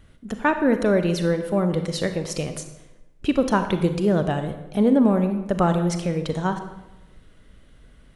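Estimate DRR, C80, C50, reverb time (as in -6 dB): 7.5 dB, 11.0 dB, 9.0 dB, 1.0 s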